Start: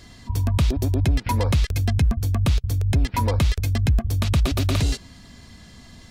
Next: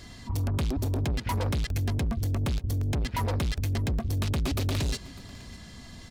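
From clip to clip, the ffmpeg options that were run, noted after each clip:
-af "asoftclip=type=tanh:threshold=-25dB,aecho=1:1:601:0.0944"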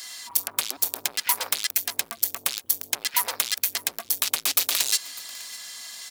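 -af "highpass=1k,aemphasis=mode=production:type=75fm,volume=6dB"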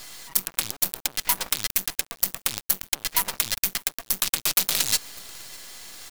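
-af "acrusher=bits=4:dc=4:mix=0:aa=0.000001"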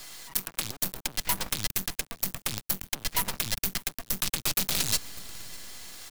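-filter_complex "[0:a]acrossover=split=250|1300[a][b][c];[a]dynaudnorm=f=470:g=3:m=9dB[d];[d][b][c]amix=inputs=3:normalize=0,asoftclip=type=hard:threshold=-16dB,volume=-2.5dB"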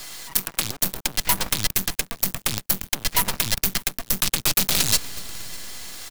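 -filter_complex "[0:a]asplit=2[a][b];[b]adelay=239.1,volume=-20dB,highshelf=f=4k:g=-5.38[c];[a][c]amix=inputs=2:normalize=0,volume=7dB"

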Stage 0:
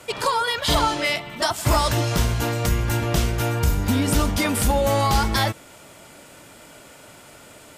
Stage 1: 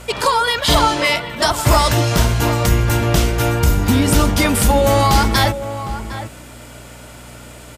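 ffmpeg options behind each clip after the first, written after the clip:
-filter_complex "[0:a]aeval=exprs='val(0)+0.00631*(sin(2*PI*60*n/s)+sin(2*PI*2*60*n/s)/2+sin(2*PI*3*60*n/s)/3+sin(2*PI*4*60*n/s)/4+sin(2*PI*5*60*n/s)/5)':c=same,asplit=2[a][b];[b]adelay=758,volume=-11dB,highshelf=f=4k:g=-17.1[c];[a][c]amix=inputs=2:normalize=0,volume=6dB"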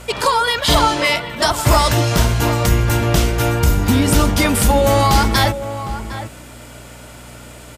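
-af anull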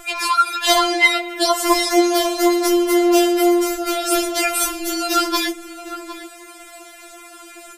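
-af "afftfilt=real='re*4*eq(mod(b,16),0)':imag='im*4*eq(mod(b,16),0)':win_size=2048:overlap=0.75,volume=2dB"

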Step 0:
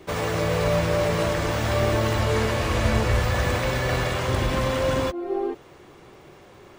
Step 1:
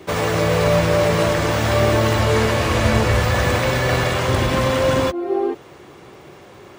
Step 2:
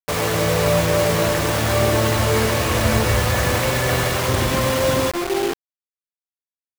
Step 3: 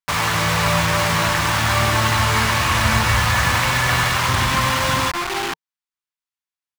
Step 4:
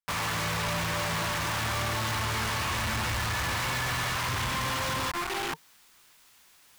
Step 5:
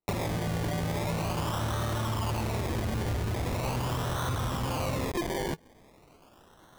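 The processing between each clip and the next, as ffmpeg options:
-af "highpass=70,volume=6dB"
-af "acrusher=bits=3:mix=0:aa=0.000001,volume=-1.5dB"
-af "firequalizer=gain_entry='entry(160,0);entry(450,-12);entry(920,6);entry(13000,-3)':delay=0.05:min_phase=1"
-af "areverse,acompressor=mode=upward:threshold=-21dB:ratio=2.5,areverse,asoftclip=type=hard:threshold=-21.5dB,volume=-6.5dB"
-af "tiltshelf=f=1.2k:g=6.5,acompressor=threshold=-34dB:ratio=10,acrusher=samples=26:mix=1:aa=0.000001:lfo=1:lforange=15.6:lforate=0.41,volume=6dB"

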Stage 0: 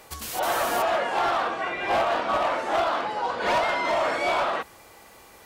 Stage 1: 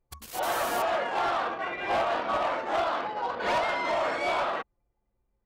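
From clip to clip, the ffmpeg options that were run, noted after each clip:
-af "anlmdn=15.8,volume=-3.5dB"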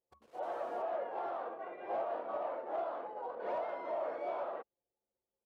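-af "bandpass=f=520:t=q:w=1.7:csg=0,volume=-6dB"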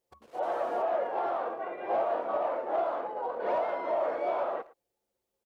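-filter_complex "[0:a]asplit=2[a][b];[b]adelay=110,highpass=300,lowpass=3.4k,asoftclip=type=hard:threshold=-37dB,volume=-19dB[c];[a][c]amix=inputs=2:normalize=0,volume=8dB"

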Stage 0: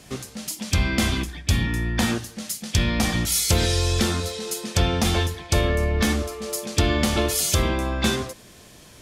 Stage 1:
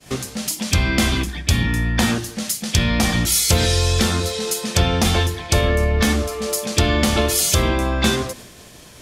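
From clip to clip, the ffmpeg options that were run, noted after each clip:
-filter_complex "[0:a]bandreject=f=50:t=h:w=6,bandreject=f=100:t=h:w=6,bandreject=f=150:t=h:w=6,bandreject=f=200:t=h:w=6,bandreject=f=250:t=h:w=6,bandreject=f=300:t=h:w=6,bandreject=f=350:t=h:w=6,agate=range=-33dB:threshold=-43dB:ratio=3:detection=peak,asplit=2[a][b];[b]acompressor=threshold=-31dB:ratio=6,volume=1.5dB[c];[a][c]amix=inputs=2:normalize=0,volume=2dB"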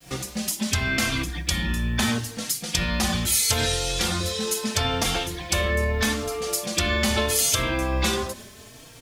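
-filter_complex "[0:a]acrossover=split=740|4200[a][b][c];[a]alimiter=limit=-17.5dB:level=0:latency=1[d];[d][b][c]amix=inputs=3:normalize=0,acrusher=bits=8:mix=0:aa=0.000001,asplit=2[e][f];[f]adelay=3.8,afreqshift=0.77[g];[e][g]amix=inputs=2:normalize=1"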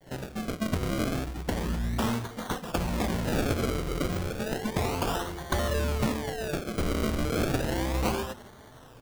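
-af "acrusher=samples=34:mix=1:aa=0.000001:lfo=1:lforange=34:lforate=0.32,volume=-4.5dB"

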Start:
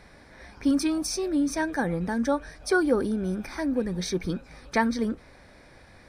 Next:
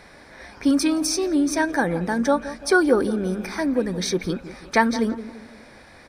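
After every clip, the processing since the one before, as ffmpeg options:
-filter_complex "[0:a]lowshelf=f=170:g=-9,asplit=2[a][b];[b]adelay=171,lowpass=f=1.2k:p=1,volume=-13dB,asplit=2[c][d];[d]adelay=171,lowpass=f=1.2k:p=1,volume=0.44,asplit=2[e][f];[f]adelay=171,lowpass=f=1.2k:p=1,volume=0.44,asplit=2[g][h];[h]adelay=171,lowpass=f=1.2k:p=1,volume=0.44[i];[a][c][e][g][i]amix=inputs=5:normalize=0,volume=6.5dB"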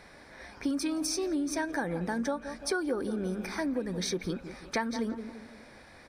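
-af "acompressor=threshold=-23dB:ratio=4,volume=-5.5dB"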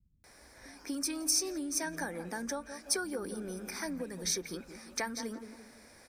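-filter_complex "[0:a]aexciter=amount=4:drive=5.7:freq=5.1k,acrossover=split=160[a][b];[b]adelay=240[c];[a][c]amix=inputs=2:normalize=0,adynamicequalizer=threshold=0.00501:dfrequency=2300:dqfactor=0.88:tfrequency=2300:tqfactor=0.88:attack=5:release=100:ratio=0.375:range=2:mode=boostabove:tftype=bell,volume=-6.5dB"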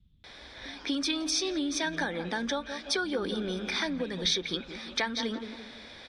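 -filter_complex "[0:a]lowpass=f=3.5k:t=q:w=9.5,asplit=2[a][b];[b]alimiter=level_in=3.5dB:limit=-24dB:level=0:latency=1:release=345,volume=-3.5dB,volume=2dB[c];[a][c]amix=inputs=2:normalize=0"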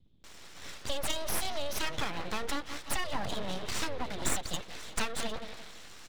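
-af "aeval=exprs='abs(val(0))':c=same"

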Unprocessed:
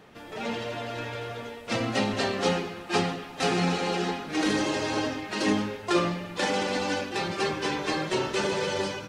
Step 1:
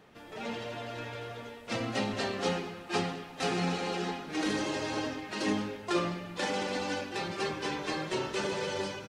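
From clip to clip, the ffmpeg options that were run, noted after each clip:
-filter_complex "[0:a]asplit=2[a][b];[b]adelay=204.1,volume=-19dB,highshelf=f=4k:g=-4.59[c];[a][c]amix=inputs=2:normalize=0,volume=-5.5dB"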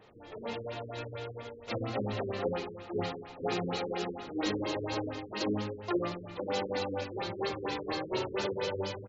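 -af "equalizer=f=100:t=o:w=0.33:g=8,equalizer=f=160:t=o:w=0.33:g=-9,equalizer=f=250:t=o:w=0.33:g=-5,equalizer=f=500:t=o:w=0.33:g=3,equalizer=f=1.6k:t=o:w=0.33:g=-4,equalizer=f=4k:t=o:w=0.33:g=5,equalizer=f=8k:t=o:w=0.33:g=10,afftfilt=real='re*lt(b*sr/1024,460*pow(7600/460,0.5+0.5*sin(2*PI*4.3*pts/sr)))':imag='im*lt(b*sr/1024,460*pow(7600/460,0.5+0.5*sin(2*PI*4.3*pts/sr)))':win_size=1024:overlap=0.75"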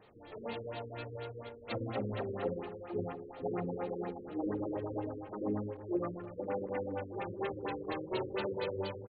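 -filter_complex "[0:a]asplit=2[a][b];[b]adelay=290,highpass=300,lowpass=3.4k,asoftclip=type=hard:threshold=-28dB,volume=-13dB[c];[a][c]amix=inputs=2:normalize=0,afftfilt=real='re*lt(b*sr/1024,500*pow(4800/500,0.5+0.5*sin(2*PI*4.2*pts/sr)))':imag='im*lt(b*sr/1024,500*pow(4800/500,0.5+0.5*sin(2*PI*4.2*pts/sr)))':win_size=1024:overlap=0.75,volume=-2.5dB"

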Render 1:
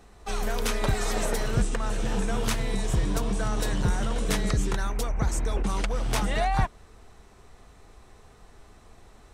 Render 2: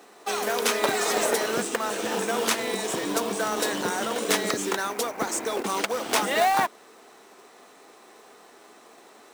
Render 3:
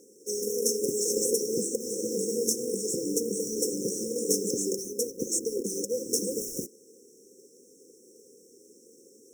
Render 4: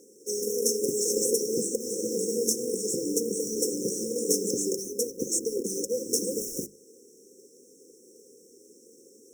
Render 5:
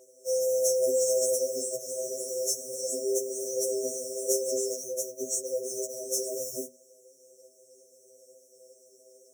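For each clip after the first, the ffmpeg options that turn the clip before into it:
-af "highpass=f=270:w=0.5412,highpass=f=270:w=1.3066,acrusher=bits=3:mode=log:mix=0:aa=0.000001,volume=6dB"
-af "afftfilt=real='re*(1-between(b*sr/4096,540,5300))':imag='im*(1-between(b*sr/4096,540,5300))':win_size=4096:overlap=0.75,equalizer=f=2.7k:t=o:w=2.9:g=7,volume=-1.5dB"
-af "bandreject=f=50:t=h:w=6,bandreject=f=100:t=h:w=6,bandreject=f=150:t=h:w=6,bandreject=f=200:t=h:w=6,volume=1dB"
-af "afreqshift=100,afftfilt=real='re*2.45*eq(mod(b,6),0)':imag='im*2.45*eq(mod(b,6),0)':win_size=2048:overlap=0.75"

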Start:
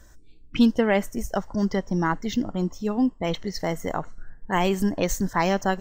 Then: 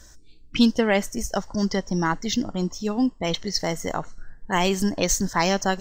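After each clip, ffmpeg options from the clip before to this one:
-af "equalizer=f=5.3k:w=0.84:g=10.5,areverse,acompressor=mode=upward:threshold=-43dB:ratio=2.5,areverse"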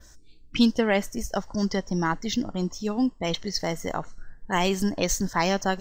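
-af "adynamicequalizer=threshold=0.00631:dfrequency=7700:dqfactor=0.9:tfrequency=7700:tqfactor=0.9:attack=5:release=100:ratio=0.375:range=2.5:mode=cutabove:tftype=bell,volume=-2dB"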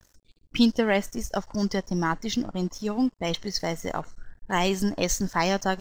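-af "aeval=exprs='sgn(val(0))*max(abs(val(0))-0.00376,0)':c=same"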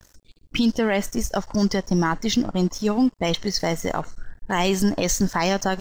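-af "alimiter=limit=-18.5dB:level=0:latency=1:release=43,volume=7dB"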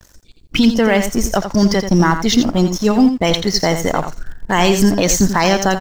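-filter_complex "[0:a]asplit=2[a][b];[b]aeval=exprs='val(0)*gte(abs(val(0)),0.0335)':c=same,volume=-12dB[c];[a][c]amix=inputs=2:normalize=0,aecho=1:1:85:0.355,volume=5.5dB"

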